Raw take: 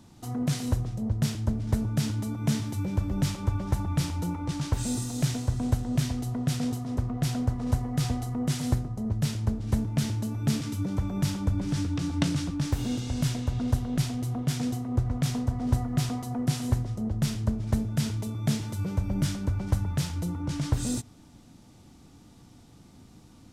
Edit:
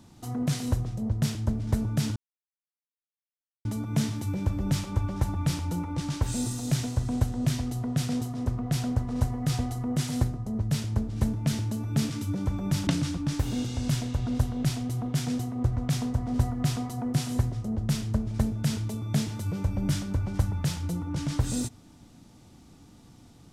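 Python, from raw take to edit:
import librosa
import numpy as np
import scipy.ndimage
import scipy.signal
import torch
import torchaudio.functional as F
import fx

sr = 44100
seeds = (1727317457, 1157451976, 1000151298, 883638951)

y = fx.edit(x, sr, fx.insert_silence(at_s=2.16, length_s=1.49),
    fx.cut(start_s=11.38, length_s=0.82), tone=tone)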